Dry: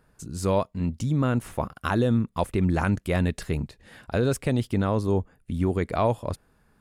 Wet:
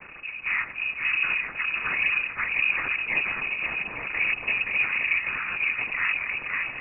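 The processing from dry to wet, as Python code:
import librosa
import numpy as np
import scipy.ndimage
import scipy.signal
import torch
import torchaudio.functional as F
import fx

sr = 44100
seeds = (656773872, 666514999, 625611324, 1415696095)

p1 = x + 0.5 * 10.0 ** (-27.5 / 20.0) * np.sign(x)
p2 = fx.echo_swing(p1, sr, ms=870, ratio=1.5, feedback_pct=37, wet_db=-4.0)
p3 = np.where(np.abs(p2) >= 10.0 ** (-32.5 / 20.0), p2, 0.0)
p4 = p2 + (p3 * 10.0 ** (-8.5 / 20.0))
p5 = fx.spec_paint(p4, sr, seeds[0], shape='rise', start_s=4.69, length_s=0.87, low_hz=280.0, high_hz=1500.0, level_db=-29.0)
p6 = fx.noise_vocoder(p5, sr, seeds[1], bands=8)
p7 = fx.freq_invert(p6, sr, carrier_hz=2700)
y = p7 * 10.0 ** (-7.5 / 20.0)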